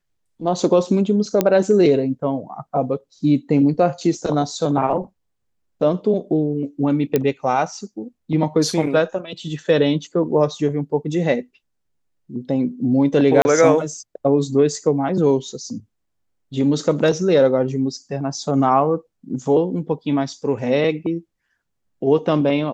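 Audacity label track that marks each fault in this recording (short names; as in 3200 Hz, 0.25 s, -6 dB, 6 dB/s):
1.410000	1.410000	pop -3 dBFS
7.160000	7.160000	pop -5 dBFS
13.420000	13.450000	gap 30 ms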